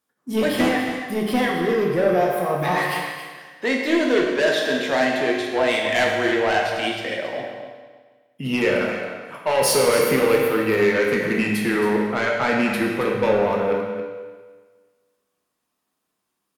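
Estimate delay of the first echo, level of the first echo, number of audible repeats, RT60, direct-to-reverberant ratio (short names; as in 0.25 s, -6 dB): 0.273 s, -10.0 dB, 1, 1.5 s, -1.5 dB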